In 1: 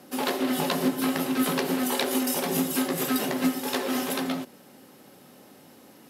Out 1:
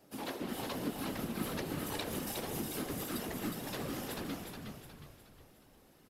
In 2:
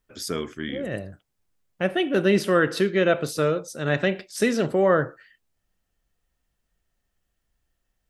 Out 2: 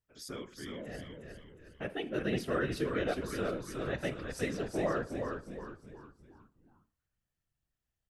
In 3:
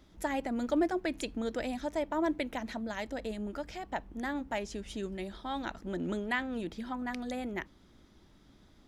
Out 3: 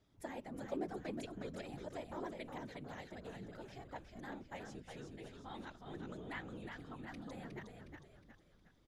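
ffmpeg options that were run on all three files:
-filter_complex "[0:a]afftfilt=real='hypot(re,im)*cos(2*PI*random(0))':imag='hypot(re,im)*sin(2*PI*random(1))':win_size=512:overlap=0.75,asplit=6[a][b][c][d][e][f];[b]adelay=362,afreqshift=-65,volume=-5dB[g];[c]adelay=724,afreqshift=-130,volume=-12.1dB[h];[d]adelay=1086,afreqshift=-195,volume=-19.3dB[i];[e]adelay=1448,afreqshift=-260,volume=-26.4dB[j];[f]adelay=1810,afreqshift=-325,volume=-33.5dB[k];[a][g][h][i][j][k]amix=inputs=6:normalize=0,volume=-7.5dB"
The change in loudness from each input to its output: -12.5, -12.5, -12.5 LU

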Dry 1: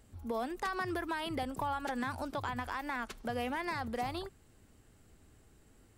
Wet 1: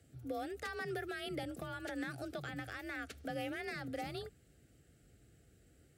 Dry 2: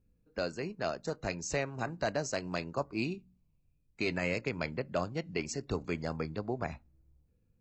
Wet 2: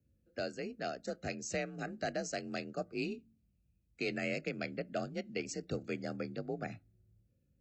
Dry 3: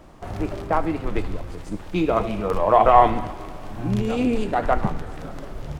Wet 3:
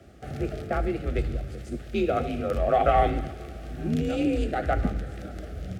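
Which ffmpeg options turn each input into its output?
-af "asuperstop=centerf=940:order=4:qfactor=1.8,afreqshift=40,volume=-3.5dB"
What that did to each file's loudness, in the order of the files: -5.5, -4.0, -5.5 LU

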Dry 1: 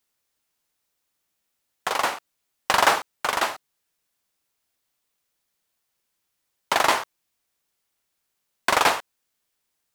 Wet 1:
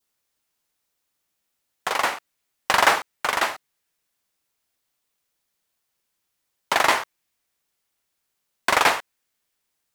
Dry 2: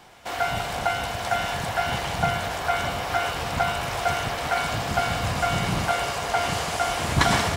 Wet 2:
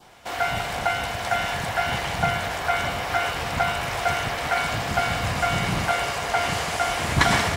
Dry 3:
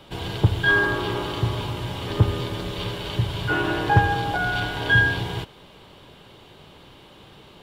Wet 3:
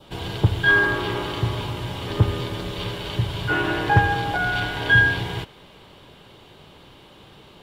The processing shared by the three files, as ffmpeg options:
-af "adynamicequalizer=threshold=0.0141:dfrequency=2000:dqfactor=1.9:tfrequency=2000:tqfactor=1.9:attack=5:release=100:ratio=0.375:range=2:mode=boostabove:tftype=bell"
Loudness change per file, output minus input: +1.0, +1.0, +1.0 LU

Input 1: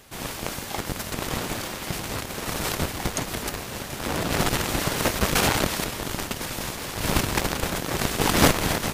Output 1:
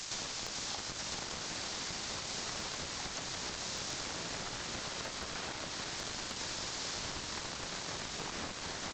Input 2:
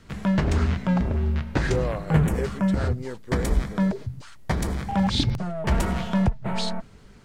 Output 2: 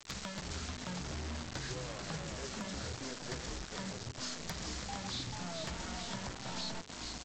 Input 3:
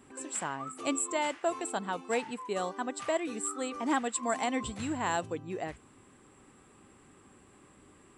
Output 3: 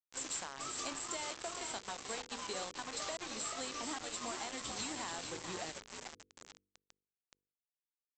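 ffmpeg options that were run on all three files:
-filter_complex "[0:a]tiltshelf=f=1.1k:g=-5,acrossover=split=3200[a][b];[b]acompressor=threshold=-36dB:ratio=4:attack=1:release=60[c];[a][c]amix=inputs=2:normalize=0,acrossover=split=680|2200[d][e][f];[f]asoftclip=type=tanh:threshold=-28dB[g];[d][e][g]amix=inputs=3:normalize=0,flanger=delay=9.8:depth=8.9:regen=-77:speed=0.56:shape=triangular,acompressor=threshold=-46dB:ratio=8,highshelf=f=3.5k:t=q:w=1.5:g=8.5,asplit=8[h][i][j][k][l][m][n][o];[i]adelay=437,afreqshift=58,volume=-6dB[p];[j]adelay=874,afreqshift=116,volume=-11dB[q];[k]adelay=1311,afreqshift=174,volume=-16.1dB[r];[l]adelay=1748,afreqshift=232,volume=-21.1dB[s];[m]adelay=2185,afreqshift=290,volume=-26.1dB[t];[n]adelay=2622,afreqshift=348,volume=-31.2dB[u];[o]adelay=3059,afreqshift=406,volume=-36.2dB[v];[h][p][q][r][s][t][u][v]amix=inputs=8:normalize=0,aresample=16000,acrusher=bits=7:mix=0:aa=0.000001,aresample=44100,aeval=exprs='0.0237*(abs(mod(val(0)/0.0237+3,4)-2)-1)':c=same,bandreject=f=49.03:t=h:w=4,bandreject=f=98.06:t=h:w=4,bandreject=f=147.09:t=h:w=4,bandreject=f=196.12:t=h:w=4,bandreject=f=245.15:t=h:w=4,bandreject=f=294.18:t=h:w=4,bandreject=f=343.21:t=h:w=4,bandreject=f=392.24:t=h:w=4,bandreject=f=441.27:t=h:w=4,bandreject=f=490.3:t=h:w=4,volume=5dB"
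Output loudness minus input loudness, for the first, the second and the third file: -12.5, -15.5, -7.5 LU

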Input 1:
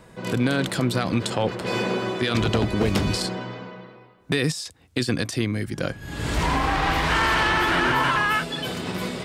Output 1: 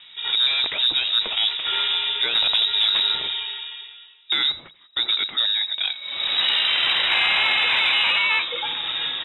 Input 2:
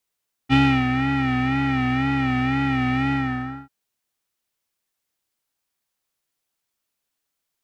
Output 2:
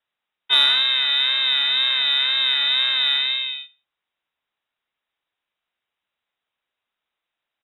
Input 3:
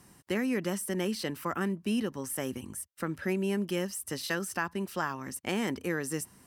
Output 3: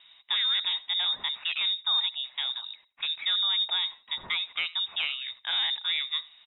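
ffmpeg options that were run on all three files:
-af "aecho=1:1:84|168:0.0841|0.0185,aresample=16000,aeval=exprs='clip(val(0),-1,0.0631)':c=same,aresample=44100,lowpass=f=3.3k:t=q:w=0.5098,lowpass=f=3.3k:t=q:w=0.6013,lowpass=f=3.3k:t=q:w=0.9,lowpass=f=3.3k:t=q:w=2.563,afreqshift=-3900,acontrast=34,volume=-2dB"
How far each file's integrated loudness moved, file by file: +4.5, +5.0, +6.0 LU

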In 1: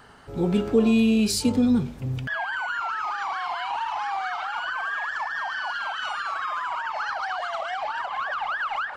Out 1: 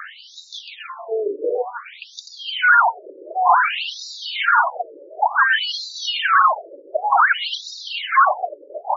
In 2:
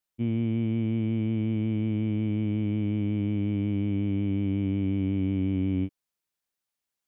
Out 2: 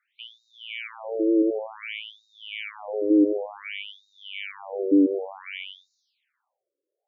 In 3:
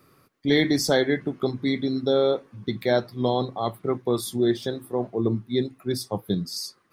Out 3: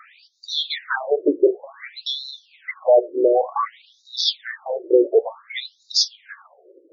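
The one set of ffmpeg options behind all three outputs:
-af "highpass=150,acompressor=threshold=-27dB:ratio=2.5,apsyclip=26dB,afftfilt=real='re*between(b*sr/1024,410*pow(5200/410,0.5+0.5*sin(2*PI*0.55*pts/sr))/1.41,410*pow(5200/410,0.5+0.5*sin(2*PI*0.55*pts/sr))*1.41)':imag='im*between(b*sr/1024,410*pow(5200/410,0.5+0.5*sin(2*PI*0.55*pts/sr))/1.41,410*pow(5200/410,0.5+0.5*sin(2*PI*0.55*pts/sr))*1.41)':win_size=1024:overlap=0.75,volume=-5.5dB"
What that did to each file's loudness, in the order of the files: +7.5, +2.0, +4.0 LU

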